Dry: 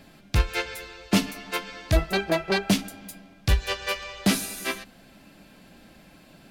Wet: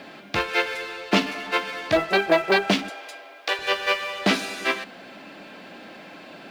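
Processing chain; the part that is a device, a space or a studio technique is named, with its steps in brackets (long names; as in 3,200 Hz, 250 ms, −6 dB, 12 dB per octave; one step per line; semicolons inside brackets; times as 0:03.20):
phone line with mismatched companding (band-pass filter 330–3,500 Hz; mu-law and A-law mismatch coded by mu)
0:02.89–0:03.59: inverse Chebyshev high-pass filter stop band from 160 Hz, stop band 50 dB
level +6 dB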